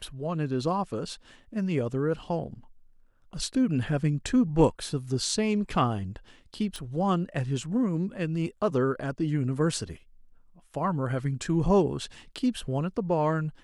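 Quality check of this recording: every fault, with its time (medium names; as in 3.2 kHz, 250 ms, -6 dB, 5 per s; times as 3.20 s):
6.76 s: pop -23 dBFS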